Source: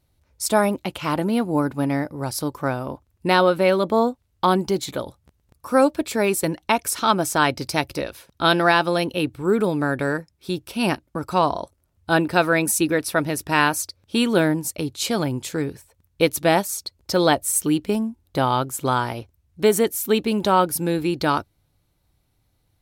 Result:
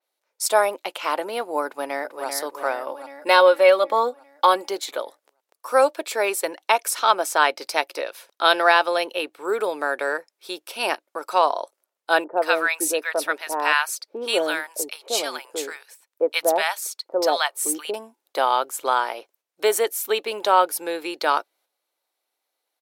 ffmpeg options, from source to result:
-filter_complex "[0:a]asplit=2[s0][s1];[s1]afade=t=in:st=1.65:d=0.01,afade=t=out:st=2.28:d=0.01,aecho=0:1:390|780|1170|1560|1950|2340|2730|3120:0.473151|0.283891|0.170334|0.102201|0.0613204|0.0367922|0.0220753|0.0132452[s2];[s0][s2]amix=inputs=2:normalize=0,asettb=1/sr,asplit=3[s3][s4][s5];[s3]atrim=end=2.874[s6];[s4]atrim=start=2.87:end=4.69,asetpts=PTS-STARTPTS,afade=t=in:d=0.004:c=qsin,afade=t=out:st=1.816:d=0.004:c=qsin,aecho=1:1:3.6:0.65,atrim=end_sample=80262[s7];[s5]atrim=start=4.686[s8];[s6][s7]acrossfade=d=0.004:c1=hsin:c2=qsin[s9];[s9][s8]acrossfade=d=0.004:c1=qsin:c2=hsin,asettb=1/sr,asplit=3[s10][s11][s12];[s10]atrim=end=12.244[s13];[s11]atrim=start=12.24:end=17.94,asetpts=PTS-STARTPTS,afade=t=in:d=0.004:c=qsin,afade=t=out:st=5.696:d=0.004:c=qsin,acrossover=split=910[s14][s15];[s15]adelay=130[s16];[s14][s16]amix=inputs=2:normalize=0,atrim=end_sample=251370[s17];[s12]atrim=start=17.936[s18];[s13][s17]acrossfade=d=0.004:c1=hsin:c2=qsin[s19];[s19][s18]acrossfade=d=0.004:c1=qsin:c2=hsin,agate=range=0.501:threshold=0.00178:ratio=16:detection=peak,highpass=f=460:w=0.5412,highpass=f=460:w=1.3066,adynamicequalizer=threshold=0.0112:dfrequency=4100:dqfactor=0.7:tfrequency=4100:tqfactor=0.7:attack=5:release=100:ratio=0.375:range=2.5:mode=cutabove:tftype=highshelf,volume=1.19"

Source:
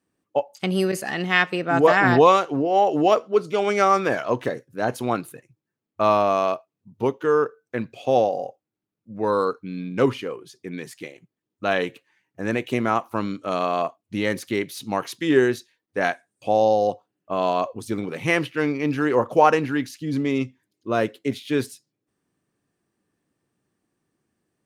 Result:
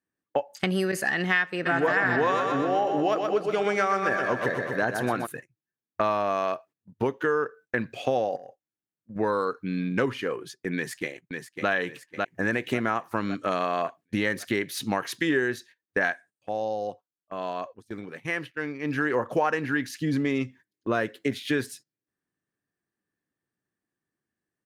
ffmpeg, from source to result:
-filter_complex "[0:a]asplit=3[s0][s1][s2];[s0]afade=t=out:st=1.65:d=0.02[s3];[s1]aecho=1:1:124|248|372|496|620|744|868:0.447|0.246|0.135|0.0743|0.0409|0.0225|0.0124,afade=t=in:st=1.65:d=0.02,afade=t=out:st=5.25:d=0.02[s4];[s2]afade=t=in:st=5.25:d=0.02[s5];[s3][s4][s5]amix=inputs=3:normalize=0,asettb=1/sr,asplit=3[s6][s7][s8];[s6]atrim=end=8.364[s9];[s7]atrim=start=8.36:end=9.16,asetpts=PTS-STARTPTS,afade=t=in:d=0.004:c=qsin,afade=t=out:st=0.796:d=0.004:c=qsin,acompressor=threshold=0.00891:ratio=6:attack=3.2:release=140:knee=1:detection=peak[s10];[s8]atrim=start=9.156[s11];[s9][s10]acrossfade=d=0.004:c1=hsin:c2=qsin[s12];[s12][s11]acrossfade=d=0.004:c1=qsin:c2=hsin,asplit=2[s13][s14];[s14]afade=t=in:st=10.75:d=0.01,afade=t=out:st=11.69:d=0.01,aecho=0:1:550|1100|1650|2200|2750|3300|3850:0.473151|0.260233|0.143128|0.0787205|0.0432963|0.023813|0.0130971[s15];[s13][s15]amix=inputs=2:normalize=0,asplit=3[s16][s17][s18];[s16]atrim=end=16.5,asetpts=PTS-STARTPTS,afade=t=out:st=16.09:d=0.41:silence=0.199526[s19];[s17]atrim=start=16.5:end=18.8,asetpts=PTS-STARTPTS,volume=0.2[s20];[s18]atrim=start=18.8,asetpts=PTS-STARTPTS,afade=t=in:d=0.41:silence=0.199526[s21];[s19][s20][s21]concat=n=3:v=0:a=1,agate=range=0.141:threshold=0.00562:ratio=16:detection=peak,equalizer=f=1700:t=o:w=0.49:g=9.5,acompressor=threshold=0.0447:ratio=4,volume=1.5"

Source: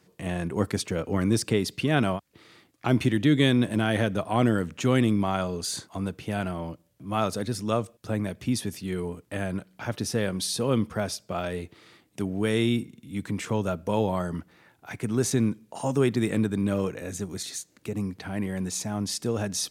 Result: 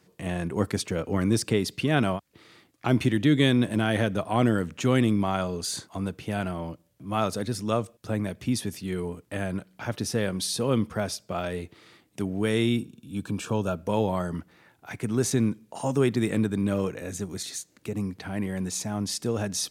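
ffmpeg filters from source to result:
-filter_complex "[0:a]asettb=1/sr,asplit=3[s0][s1][s2];[s0]atrim=end=12.784[s3];[s1]atrim=start=12.78:end=13.75,asetpts=PTS-STARTPTS,afade=t=in:d=0.004:c=qsin,afade=t=out:st=0.966:d=0.004:c=qsin,asuperstop=centerf=2000:order=8:qfactor=3.9[s4];[s2]atrim=start=13.746[s5];[s3][s4]acrossfade=d=0.004:c1=hsin:c2=qsin[s6];[s6][s5]acrossfade=d=0.004:c1=qsin:c2=hsin"

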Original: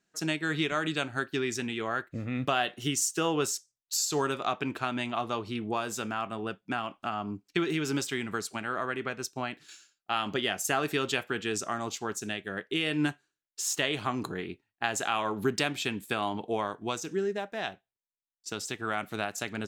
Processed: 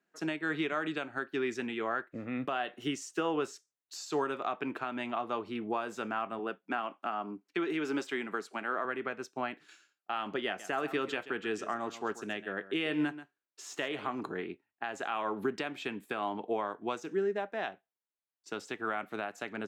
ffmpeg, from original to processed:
-filter_complex "[0:a]asettb=1/sr,asplit=3[s0][s1][s2];[s0]atrim=end=6.394[s3];[s1]atrim=start=6.39:end=8.85,asetpts=PTS-STARTPTS,afade=t=in:d=0.004:c=qsin,afade=t=out:st=2.456:d=0.004:c=qsin,highpass=200[s4];[s2]atrim=start=8.846[s5];[s3][s4]acrossfade=d=0.004:c1=hsin:c2=qsin[s6];[s6][s5]acrossfade=d=0.004:c1=qsin:c2=hsin,asettb=1/sr,asplit=3[s7][s8][s9];[s7]atrim=end=10.464[s10];[s8]atrim=start=10.46:end=14.21,asetpts=PTS-STARTPTS,afade=t=in:d=0.004:c=qsin,afade=t=out:st=3.746:d=0.004:c=qsin,aecho=1:1:133:0.178,atrim=end_sample=165375[s11];[s9]atrim=start=14.206[s12];[s10][s11]acrossfade=d=0.004:c1=hsin:c2=qsin[s13];[s13][s12]acrossfade=d=0.004:c1=qsin:c2=hsin,acrossover=split=7100[s14][s15];[s15]acompressor=threshold=0.00631:ratio=4:attack=1:release=60[s16];[s14][s16]amix=inputs=2:normalize=0,acrossover=split=200 2600:gain=0.158 1 0.224[s17][s18][s19];[s17][s18][s19]amix=inputs=3:normalize=0,alimiter=limit=0.0841:level=0:latency=1:release=263"

